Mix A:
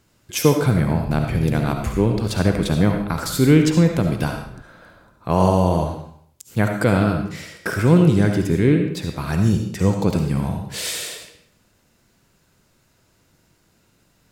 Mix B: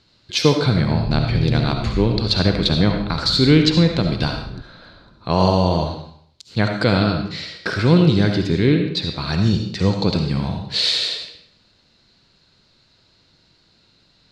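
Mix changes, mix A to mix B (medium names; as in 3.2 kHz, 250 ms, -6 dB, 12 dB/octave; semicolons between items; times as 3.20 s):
background +7.0 dB; master: add resonant low-pass 4.2 kHz, resonance Q 6.9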